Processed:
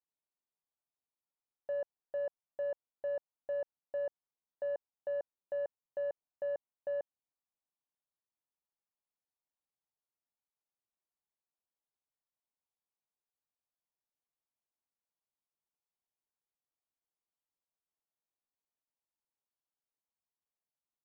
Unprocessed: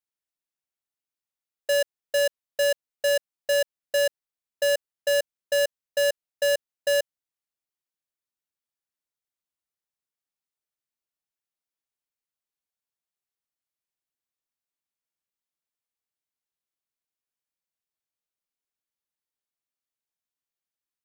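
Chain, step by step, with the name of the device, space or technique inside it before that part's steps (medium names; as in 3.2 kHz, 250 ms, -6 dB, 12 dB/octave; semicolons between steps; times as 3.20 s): overdriven synthesiser ladder filter (saturation -31 dBFS, distortion -21 dB; four-pole ladder low-pass 1.2 kHz, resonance 35%); trim +3 dB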